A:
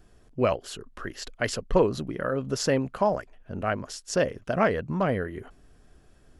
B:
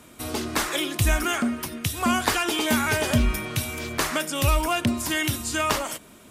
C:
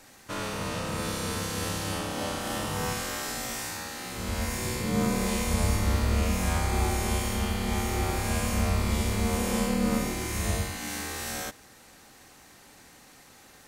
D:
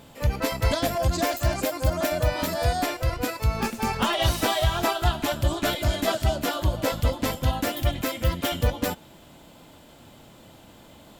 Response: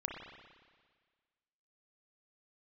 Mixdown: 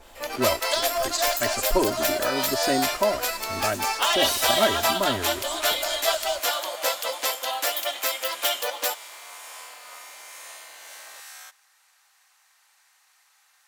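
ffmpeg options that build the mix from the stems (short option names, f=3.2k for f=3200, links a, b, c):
-filter_complex "[0:a]aecho=1:1:3.1:0.9,volume=-3dB,asplit=2[a][b];[1:a]bandpass=f=530:t=q:w=0.92:csg=0,volume=-8.5dB[c];[2:a]highpass=f=890:w=0.5412,highpass=f=890:w=1.3066,volume=-7.5dB[d];[3:a]highpass=f=550:w=0.5412,highpass=f=550:w=1.3066,acrusher=bits=7:mode=log:mix=0:aa=0.000001,adynamicequalizer=threshold=0.00708:dfrequency=2800:dqfactor=0.7:tfrequency=2800:tqfactor=0.7:attack=5:release=100:ratio=0.375:range=3:mode=boostabove:tftype=highshelf,volume=1.5dB[e];[b]apad=whole_len=278164[f];[c][f]sidechaincompress=threshold=-44dB:ratio=8:attack=16:release=179[g];[a][g][d][e]amix=inputs=4:normalize=0"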